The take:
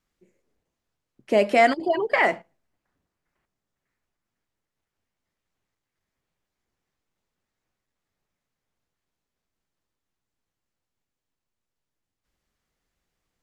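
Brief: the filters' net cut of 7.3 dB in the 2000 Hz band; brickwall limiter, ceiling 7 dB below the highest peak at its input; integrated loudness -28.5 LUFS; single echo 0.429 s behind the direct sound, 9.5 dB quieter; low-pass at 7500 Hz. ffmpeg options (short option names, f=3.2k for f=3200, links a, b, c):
-af "lowpass=7.5k,equalizer=f=2k:t=o:g=-8,alimiter=limit=-15dB:level=0:latency=1,aecho=1:1:429:0.335,volume=-1.5dB"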